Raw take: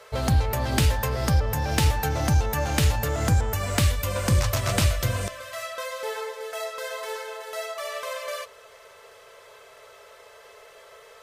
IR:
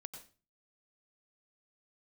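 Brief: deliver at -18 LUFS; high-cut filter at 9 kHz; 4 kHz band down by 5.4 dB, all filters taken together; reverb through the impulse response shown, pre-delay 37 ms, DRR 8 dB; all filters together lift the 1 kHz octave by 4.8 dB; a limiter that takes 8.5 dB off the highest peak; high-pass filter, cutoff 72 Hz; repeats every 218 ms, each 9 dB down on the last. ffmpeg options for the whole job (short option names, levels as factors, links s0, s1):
-filter_complex "[0:a]highpass=72,lowpass=9000,equalizer=f=1000:t=o:g=6.5,equalizer=f=4000:t=o:g=-7.5,alimiter=limit=0.15:level=0:latency=1,aecho=1:1:218|436|654|872:0.355|0.124|0.0435|0.0152,asplit=2[s0][s1];[1:a]atrim=start_sample=2205,adelay=37[s2];[s1][s2]afir=irnorm=-1:irlink=0,volume=0.668[s3];[s0][s3]amix=inputs=2:normalize=0,volume=2.82"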